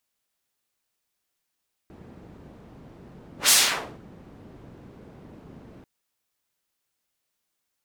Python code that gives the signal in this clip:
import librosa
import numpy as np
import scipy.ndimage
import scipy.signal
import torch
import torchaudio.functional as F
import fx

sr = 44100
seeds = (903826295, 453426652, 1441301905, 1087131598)

y = fx.whoosh(sr, seeds[0], length_s=3.94, peak_s=1.6, rise_s=0.13, fall_s=0.54, ends_hz=210.0, peak_hz=7500.0, q=0.73, swell_db=31.5)